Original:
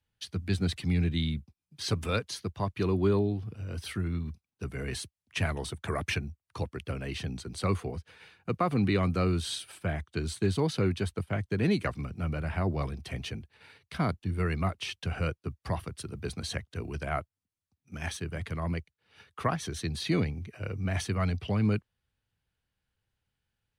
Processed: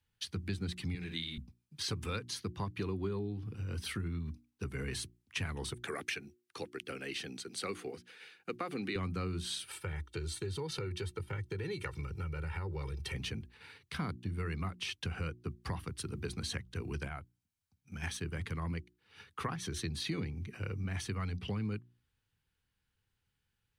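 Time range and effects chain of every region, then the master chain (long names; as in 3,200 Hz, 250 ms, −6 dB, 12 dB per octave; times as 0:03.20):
0:00.95–0:01.38: high-pass filter 700 Hz 6 dB per octave + flutter between parallel walls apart 10.2 metres, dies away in 0.38 s
0:05.74–0:08.96: high-pass filter 340 Hz + parametric band 1,000 Hz −10.5 dB 0.46 octaves
0:09.71–0:13.15: parametric band 300 Hz −4 dB 0.34 octaves + comb filter 2.2 ms, depth 88% + downward compressor 2.5 to 1, threshold −36 dBFS
0:17.07–0:18.03: comb filter 1.3 ms, depth 32% + downward compressor 2.5 to 1, threshold −41 dBFS
whole clip: parametric band 630 Hz −12.5 dB 0.35 octaves; mains-hum notches 60/120/180/240/300/360 Hz; downward compressor 4 to 1, threshold −36 dBFS; level +1 dB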